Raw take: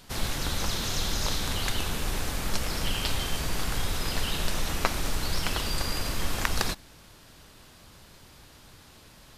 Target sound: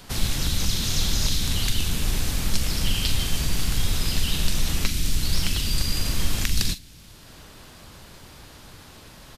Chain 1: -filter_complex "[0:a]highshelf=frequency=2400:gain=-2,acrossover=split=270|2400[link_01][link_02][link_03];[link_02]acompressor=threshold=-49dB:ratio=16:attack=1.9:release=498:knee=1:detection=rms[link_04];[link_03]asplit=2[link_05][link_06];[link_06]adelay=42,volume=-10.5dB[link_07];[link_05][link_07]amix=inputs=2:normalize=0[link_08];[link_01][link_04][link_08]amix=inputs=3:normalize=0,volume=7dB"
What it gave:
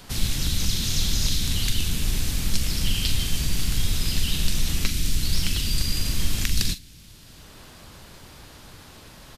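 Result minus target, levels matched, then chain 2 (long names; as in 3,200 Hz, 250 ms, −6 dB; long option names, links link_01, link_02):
downward compressor: peak gain reduction +6.5 dB
-filter_complex "[0:a]highshelf=frequency=2400:gain=-2,acrossover=split=270|2400[link_01][link_02][link_03];[link_02]acompressor=threshold=-42dB:ratio=16:attack=1.9:release=498:knee=1:detection=rms[link_04];[link_03]asplit=2[link_05][link_06];[link_06]adelay=42,volume=-10.5dB[link_07];[link_05][link_07]amix=inputs=2:normalize=0[link_08];[link_01][link_04][link_08]amix=inputs=3:normalize=0,volume=7dB"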